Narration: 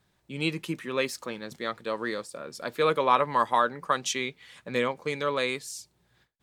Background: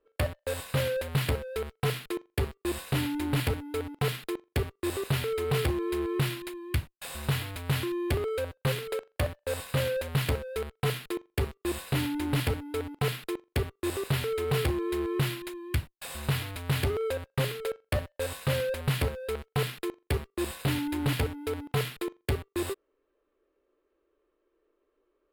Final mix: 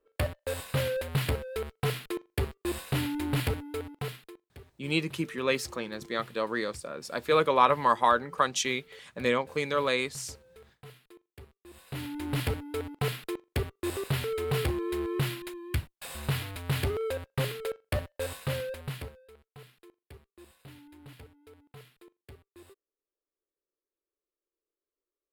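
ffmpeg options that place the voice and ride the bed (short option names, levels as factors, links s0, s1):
-filter_complex "[0:a]adelay=4500,volume=1.06[s0];[1:a]volume=8.41,afade=t=out:st=3.58:d=0.82:silence=0.1,afade=t=in:st=11.7:d=0.78:silence=0.105925,afade=t=out:st=18.23:d=1.03:silence=0.0944061[s1];[s0][s1]amix=inputs=2:normalize=0"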